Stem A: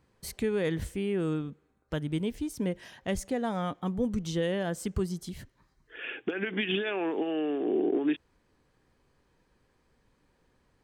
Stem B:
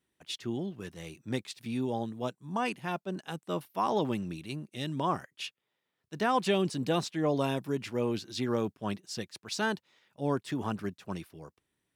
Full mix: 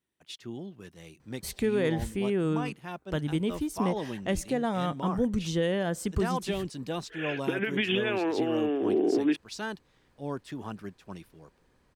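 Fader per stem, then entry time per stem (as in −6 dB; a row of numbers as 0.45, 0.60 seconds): +2.0, −5.0 decibels; 1.20, 0.00 seconds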